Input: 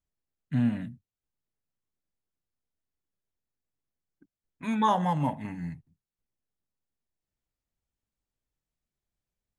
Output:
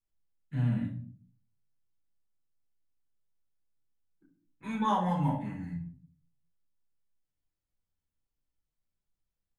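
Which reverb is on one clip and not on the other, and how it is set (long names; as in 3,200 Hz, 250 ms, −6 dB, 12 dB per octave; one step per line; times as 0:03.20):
rectangular room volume 400 cubic metres, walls furnished, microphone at 4.2 metres
level −11 dB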